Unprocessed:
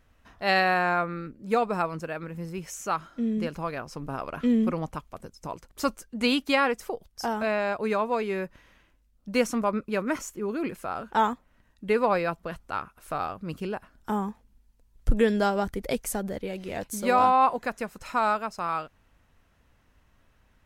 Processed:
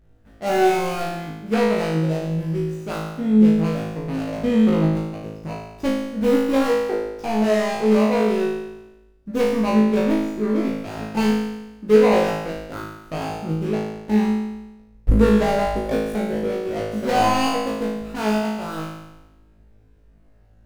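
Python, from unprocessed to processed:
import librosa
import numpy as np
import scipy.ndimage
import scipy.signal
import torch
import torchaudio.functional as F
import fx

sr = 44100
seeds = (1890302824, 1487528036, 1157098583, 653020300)

y = scipy.ndimage.median_filter(x, 41, mode='constant')
y = fx.room_flutter(y, sr, wall_m=3.2, rt60_s=1.0)
y = F.gain(torch.from_numpy(y), 4.5).numpy()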